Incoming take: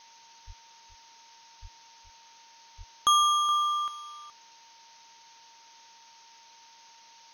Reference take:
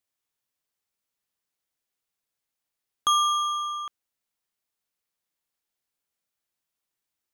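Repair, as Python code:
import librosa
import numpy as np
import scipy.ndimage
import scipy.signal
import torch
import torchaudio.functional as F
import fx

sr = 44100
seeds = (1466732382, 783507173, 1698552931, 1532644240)

y = fx.notch(x, sr, hz=920.0, q=30.0)
y = fx.fix_deplosive(y, sr, at_s=(0.46, 1.61, 2.77))
y = fx.noise_reduce(y, sr, print_start_s=4.33, print_end_s=4.83, reduce_db=30.0)
y = fx.fix_echo_inverse(y, sr, delay_ms=421, level_db=-13.5)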